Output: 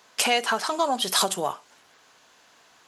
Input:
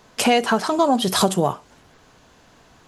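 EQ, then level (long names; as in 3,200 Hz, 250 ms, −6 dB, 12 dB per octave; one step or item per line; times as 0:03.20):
high-pass filter 1,200 Hz 6 dB per octave
0.0 dB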